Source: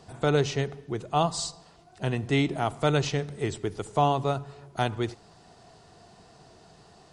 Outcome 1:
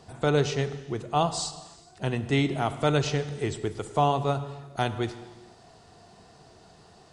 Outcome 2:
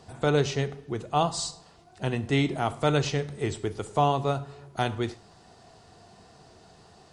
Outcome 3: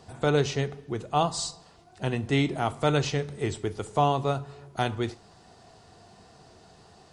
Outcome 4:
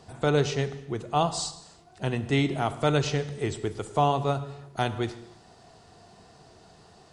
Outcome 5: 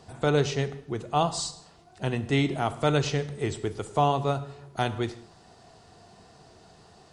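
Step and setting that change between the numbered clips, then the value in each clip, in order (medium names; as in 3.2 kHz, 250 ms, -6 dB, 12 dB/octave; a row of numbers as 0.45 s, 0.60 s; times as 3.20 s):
gated-style reverb, gate: 510 ms, 140 ms, 90 ms, 350 ms, 220 ms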